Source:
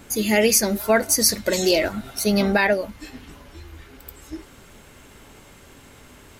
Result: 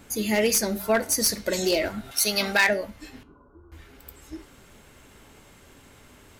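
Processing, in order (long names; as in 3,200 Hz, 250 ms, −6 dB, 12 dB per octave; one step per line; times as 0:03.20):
wavefolder on the positive side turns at −10.5 dBFS
0:02.11–0:02.69: tilt shelving filter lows −9 dB, about 740 Hz
0:03.23–0:03.72: Chebyshev low-pass with heavy ripple 1,500 Hz, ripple 9 dB
flanger 0.33 Hz, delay 9.4 ms, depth 6.5 ms, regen −82%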